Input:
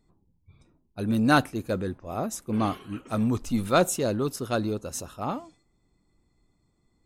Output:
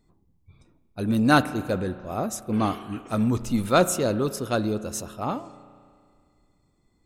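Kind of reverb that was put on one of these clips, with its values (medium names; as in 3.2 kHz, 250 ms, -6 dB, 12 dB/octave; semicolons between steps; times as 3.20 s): spring tank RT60 2.1 s, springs 33 ms, chirp 80 ms, DRR 14 dB; trim +2 dB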